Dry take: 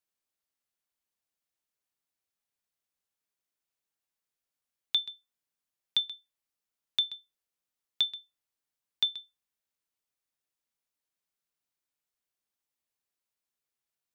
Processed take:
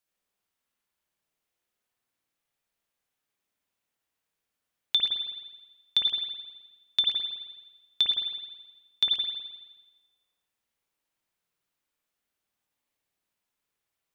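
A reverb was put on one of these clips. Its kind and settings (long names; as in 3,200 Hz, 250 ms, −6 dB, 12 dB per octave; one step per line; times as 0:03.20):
spring reverb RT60 1.2 s, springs 53 ms, chirp 60 ms, DRR −3 dB
level +3 dB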